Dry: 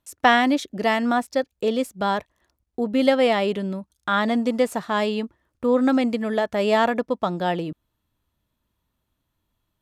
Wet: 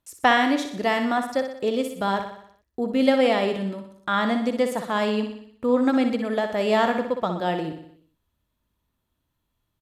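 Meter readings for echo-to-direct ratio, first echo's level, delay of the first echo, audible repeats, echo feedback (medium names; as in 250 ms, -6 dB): -6.5 dB, -8.0 dB, 61 ms, 6, 55%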